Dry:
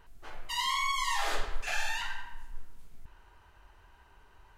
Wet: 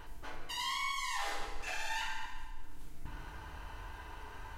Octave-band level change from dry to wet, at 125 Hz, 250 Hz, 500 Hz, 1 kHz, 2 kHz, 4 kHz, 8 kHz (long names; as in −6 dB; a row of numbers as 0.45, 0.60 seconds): +0.5, +2.0, −5.0, −5.0, −4.5, −5.0, −5.0 decibels